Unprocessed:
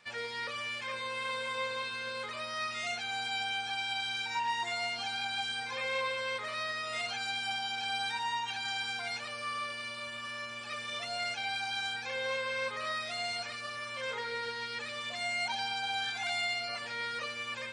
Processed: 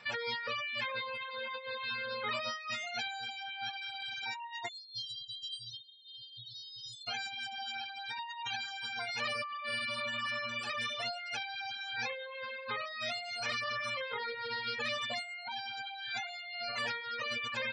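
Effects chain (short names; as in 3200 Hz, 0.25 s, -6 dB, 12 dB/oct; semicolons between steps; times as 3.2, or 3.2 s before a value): spectral gate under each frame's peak -20 dB strong; negative-ratio compressor -41 dBFS, ratio -1; spectral delete 4.69–7.08, 200–3100 Hz; reverb removal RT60 0.78 s; gain +3.5 dB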